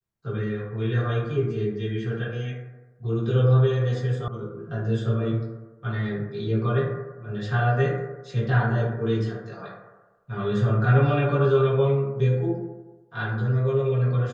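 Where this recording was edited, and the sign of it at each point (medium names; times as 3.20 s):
4.28 s: sound stops dead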